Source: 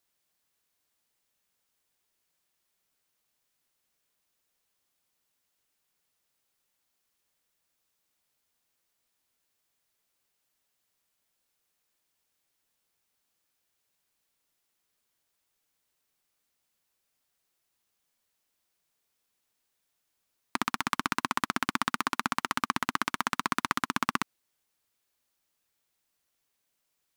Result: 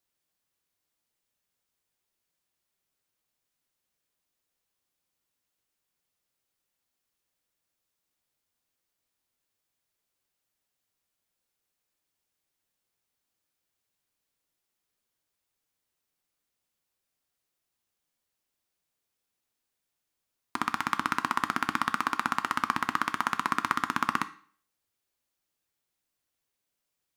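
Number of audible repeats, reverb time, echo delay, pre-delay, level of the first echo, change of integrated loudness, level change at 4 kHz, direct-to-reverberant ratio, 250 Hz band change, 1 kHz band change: none, 0.50 s, none, 4 ms, none, +1.0 dB, -3.0 dB, 10.5 dB, -1.0 dB, +2.0 dB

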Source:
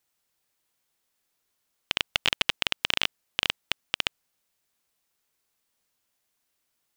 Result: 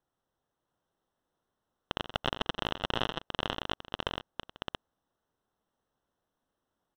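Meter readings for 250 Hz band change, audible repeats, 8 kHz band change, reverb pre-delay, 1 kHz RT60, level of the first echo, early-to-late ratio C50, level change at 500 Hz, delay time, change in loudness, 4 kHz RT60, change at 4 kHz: +5.5 dB, 4, -15.0 dB, none, none, -12.5 dB, none, +5.0 dB, 87 ms, -7.5 dB, none, -8.5 dB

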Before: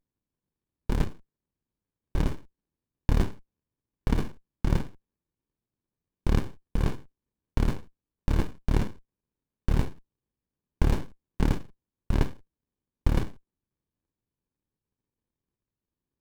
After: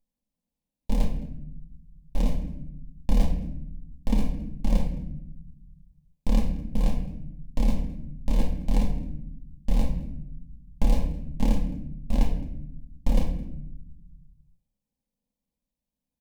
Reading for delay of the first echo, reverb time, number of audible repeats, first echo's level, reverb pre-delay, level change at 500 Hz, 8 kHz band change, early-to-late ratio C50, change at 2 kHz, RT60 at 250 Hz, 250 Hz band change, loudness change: 0.215 s, 0.80 s, 1, -21.5 dB, 4 ms, -0.5 dB, n/a, 7.5 dB, -5.5 dB, 1.6 s, +3.0 dB, +0.5 dB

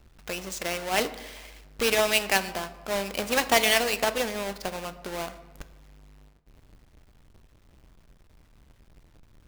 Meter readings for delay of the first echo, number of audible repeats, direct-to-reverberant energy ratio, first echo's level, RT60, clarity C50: none, none, 11.5 dB, none, 1.2 s, 14.5 dB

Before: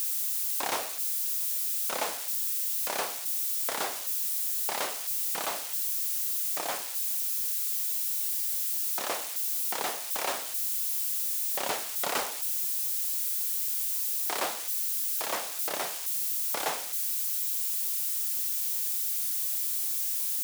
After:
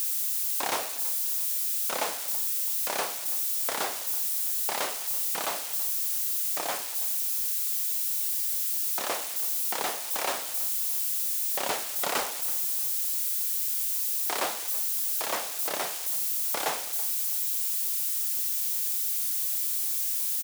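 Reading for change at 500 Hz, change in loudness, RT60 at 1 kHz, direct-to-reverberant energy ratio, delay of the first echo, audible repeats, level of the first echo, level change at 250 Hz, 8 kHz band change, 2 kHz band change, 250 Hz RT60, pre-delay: +1.5 dB, +1.5 dB, none, none, 0.328 s, 2, -19.0 dB, +1.5 dB, +1.5 dB, +1.5 dB, none, none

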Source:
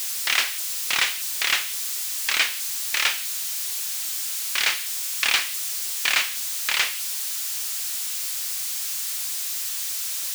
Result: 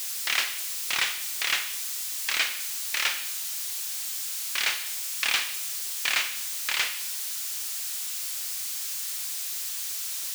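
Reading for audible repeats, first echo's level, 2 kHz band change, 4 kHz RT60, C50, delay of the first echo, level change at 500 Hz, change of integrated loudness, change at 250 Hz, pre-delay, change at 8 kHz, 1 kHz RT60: none, none, -4.0 dB, 0.90 s, 12.0 dB, none, -4.0 dB, -4.0 dB, -4.0 dB, 26 ms, -4.0 dB, 0.95 s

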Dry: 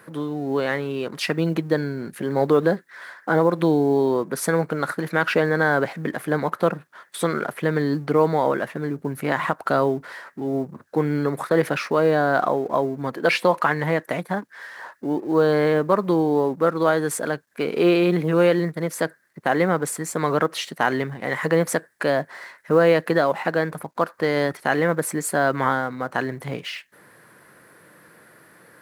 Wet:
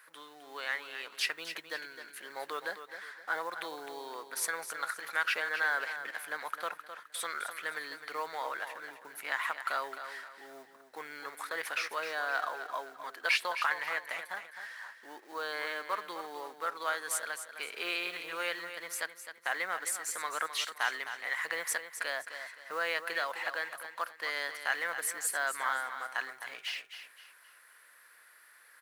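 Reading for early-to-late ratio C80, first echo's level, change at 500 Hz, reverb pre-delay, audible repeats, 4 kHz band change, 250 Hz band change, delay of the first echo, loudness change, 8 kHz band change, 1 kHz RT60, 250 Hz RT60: none, -10.0 dB, -23.0 dB, none, 3, -4.0 dB, -32.0 dB, 0.26 s, -13.0 dB, -4.0 dB, none, none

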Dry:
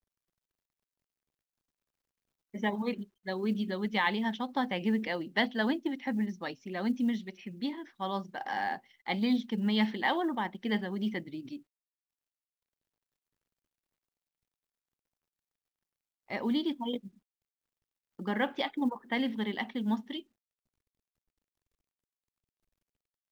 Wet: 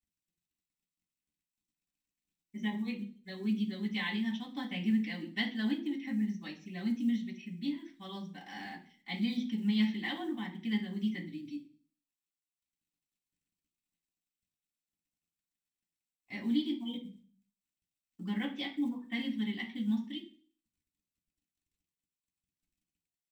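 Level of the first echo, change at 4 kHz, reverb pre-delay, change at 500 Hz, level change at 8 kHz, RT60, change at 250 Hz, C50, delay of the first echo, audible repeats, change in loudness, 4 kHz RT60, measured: none, -2.5 dB, 3 ms, -12.5 dB, n/a, 0.45 s, -1.0 dB, 11.5 dB, none, none, -3.0 dB, 0.50 s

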